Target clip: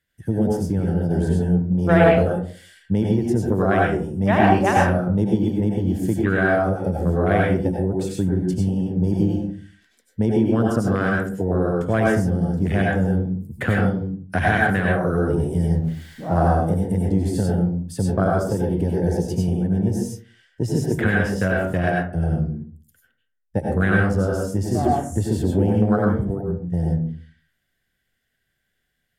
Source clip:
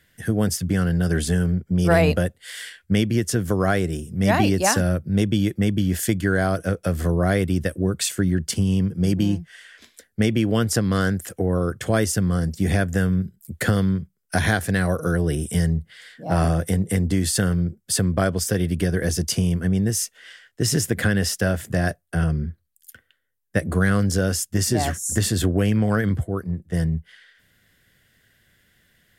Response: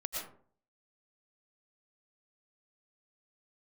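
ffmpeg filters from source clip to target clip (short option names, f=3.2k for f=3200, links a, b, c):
-filter_complex "[0:a]asettb=1/sr,asplit=3[a][b][c];[a]atrim=end=15.744[d];[b]atrim=start=15.74:end=16.4,asetpts=PTS-STARTPTS,afade=t=in:d=0.004:c=qsin,afade=t=out:st=0.656:d=0.004:c=qsin,aeval=exprs='val(0)+0.5*0.0282*sgn(val(0))':c=same[e];[c]atrim=start=16.396[f];[d][e]acrossfade=d=0.004:c1=hsin:c2=qsin[g];[g][f]acrossfade=d=0.004:c1=qsin:c2=hsin,afwtdn=0.0501[h];[1:a]atrim=start_sample=2205,asetrate=52920,aresample=44100[i];[h][i]afir=irnorm=-1:irlink=0,volume=3.5dB"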